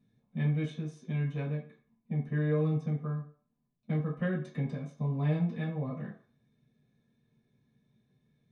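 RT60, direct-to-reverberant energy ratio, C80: 0.45 s, -7.5 dB, 12.0 dB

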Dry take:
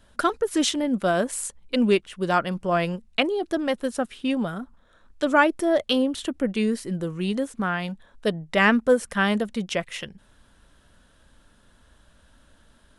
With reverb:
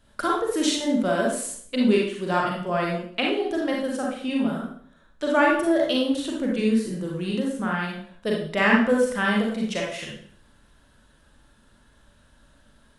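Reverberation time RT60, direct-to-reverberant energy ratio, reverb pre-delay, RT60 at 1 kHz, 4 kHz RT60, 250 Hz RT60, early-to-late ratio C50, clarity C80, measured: 0.55 s, -2.5 dB, 34 ms, 0.55 s, 0.50 s, 0.65 s, 1.0 dB, 6.5 dB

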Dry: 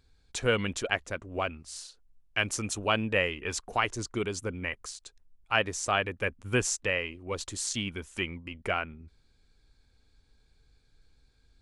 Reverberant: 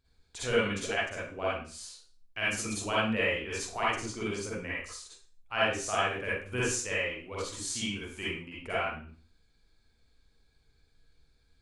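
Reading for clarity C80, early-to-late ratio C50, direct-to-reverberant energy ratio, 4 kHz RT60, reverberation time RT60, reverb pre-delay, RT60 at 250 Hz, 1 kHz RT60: 5.0 dB, -4.0 dB, -8.5 dB, 0.40 s, 0.40 s, 37 ms, 0.40 s, 0.40 s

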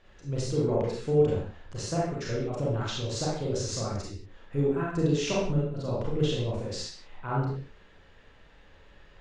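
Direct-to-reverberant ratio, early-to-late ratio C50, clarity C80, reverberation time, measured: -5.5 dB, 0.0 dB, 4.0 dB, no single decay rate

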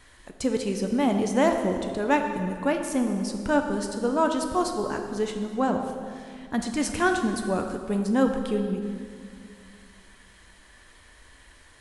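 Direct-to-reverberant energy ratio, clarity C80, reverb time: 4.0 dB, 7.0 dB, 2.2 s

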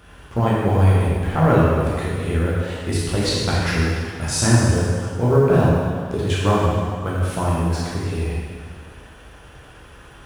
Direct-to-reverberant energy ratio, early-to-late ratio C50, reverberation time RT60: -7.0 dB, -2.5 dB, 1.9 s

